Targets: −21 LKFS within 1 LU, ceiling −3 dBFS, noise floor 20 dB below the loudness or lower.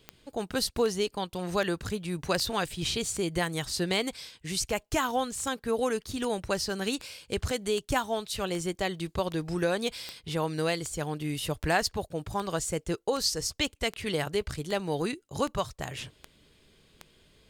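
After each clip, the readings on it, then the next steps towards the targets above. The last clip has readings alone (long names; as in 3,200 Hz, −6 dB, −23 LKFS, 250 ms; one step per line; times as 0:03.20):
number of clicks 23; integrated loudness −31.0 LKFS; sample peak −12.0 dBFS; target loudness −21.0 LKFS
→ click removal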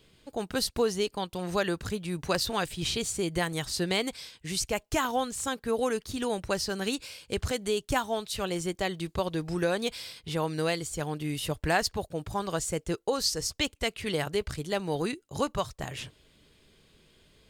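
number of clicks 0; integrated loudness −31.0 LKFS; sample peak −12.0 dBFS; target loudness −21.0 LKFS
→ level +10 dB
brickwall limiter −3 dBFS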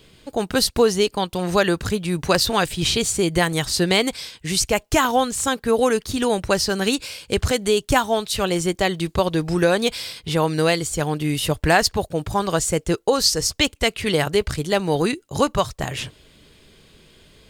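integrated loudness −21.0 LKFS; sample peak −3.0 dBFS; background noise floor −55 dBFS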